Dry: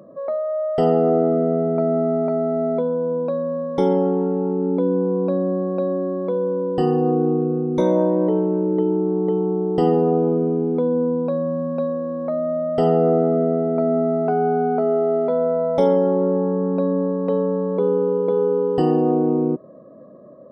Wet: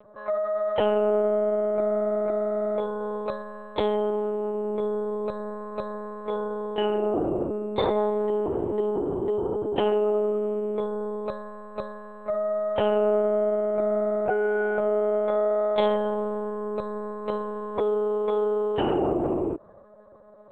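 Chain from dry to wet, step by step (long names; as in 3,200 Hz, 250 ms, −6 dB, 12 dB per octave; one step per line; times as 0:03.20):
one-pitch LPC vocoder at 8 kHz 210 Hz
spectral tilt +4 dB per octave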